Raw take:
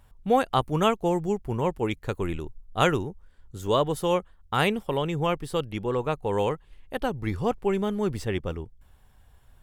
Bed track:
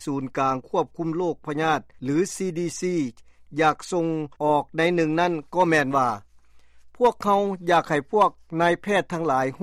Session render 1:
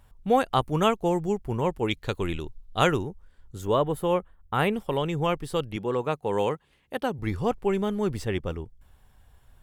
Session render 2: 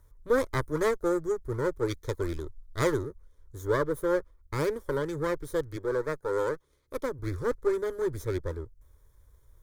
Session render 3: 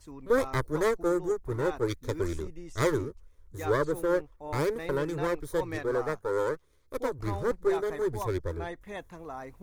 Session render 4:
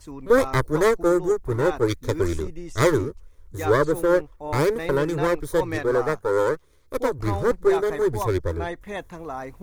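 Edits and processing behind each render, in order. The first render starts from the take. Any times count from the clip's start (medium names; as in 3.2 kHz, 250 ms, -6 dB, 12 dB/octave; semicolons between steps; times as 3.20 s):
1.88–2.80 s: peaking EQ 3.7 kHz +8.5 dB 1.1 oct; 3.65–4.73 s: peaking EQ 5.5 kHz -14.5 dB 1.2 oct; 5.76–7.19 s: high-pass 120 Hz
comb filter that takes the minimum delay 0.31 ms; static phaser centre 750 Hz, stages 6
add bed track -18.5 dB
trim +7.5 dB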